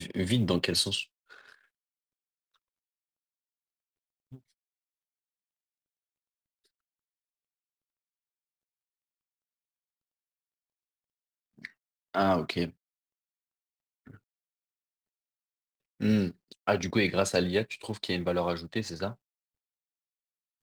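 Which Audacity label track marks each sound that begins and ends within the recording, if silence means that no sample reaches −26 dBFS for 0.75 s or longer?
11.650000	12.650000	sound
16.020000	19.080000	sound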